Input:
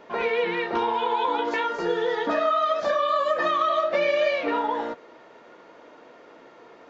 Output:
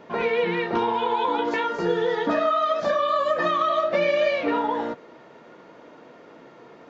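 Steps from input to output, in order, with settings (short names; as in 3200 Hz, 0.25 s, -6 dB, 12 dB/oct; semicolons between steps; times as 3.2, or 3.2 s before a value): bell 150 Hz +10 dB 1.6 oct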